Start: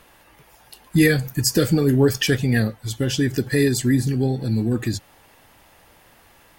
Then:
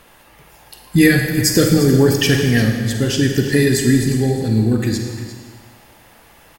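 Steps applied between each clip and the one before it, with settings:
single-tap delay 351 ms −13.5 dB
on a send at −3.5 dB: convolution reverb RT60 1.6 s, pre-delay 37 ms
on the sum: level +3.5 dB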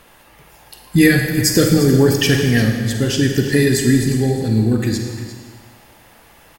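no processing that can be heard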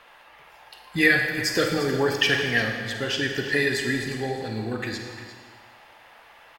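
three-way crossover with the lows and the highs turned down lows −17 dB, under 540 Hz, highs −17 dB, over 4,100 Hz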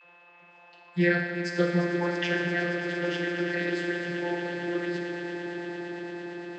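echo that builds up and dies away 114 ms, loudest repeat 8, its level −15 dB
channel vocoder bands 32, saw 174 Hz
steady tone 2,600 Hz −51 dBFS
level −4 dB

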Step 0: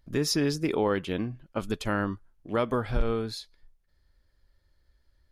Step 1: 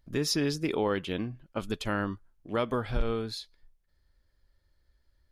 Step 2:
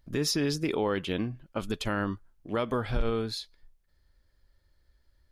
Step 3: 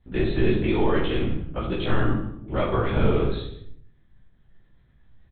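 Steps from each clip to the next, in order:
dynamic equaliser 3,300 Hz, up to +4 dB, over −48 dBFS, Q 1.4; level −2.5 dB
brickwall limiter −21 dBFS, peak gain reduction 4.5 dB; level +2.5 dB
linear-prediction vocoder at 8 kHz whisper; single-tap delay 156 ms −15 dB; convolution reverb RT60 0.65 s, pre-delay 16 ms, DRR −3 dB

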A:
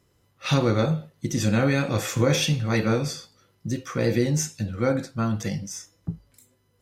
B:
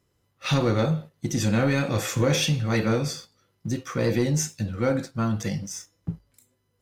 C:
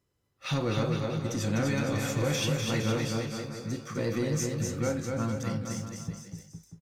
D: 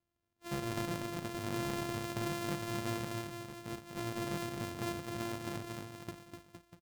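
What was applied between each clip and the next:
leveller curve on the samples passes 1; level −3.5 dB
bouncing-ball delay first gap 250 ms, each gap 0.85×, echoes 5; level −7 dB
samples sorted by size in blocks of 128 samples; level −9 dB

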